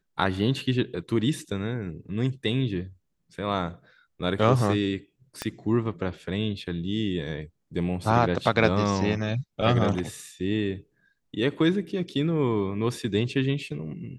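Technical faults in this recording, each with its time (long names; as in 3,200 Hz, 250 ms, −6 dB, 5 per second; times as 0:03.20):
0:05.42: click −14 dBFS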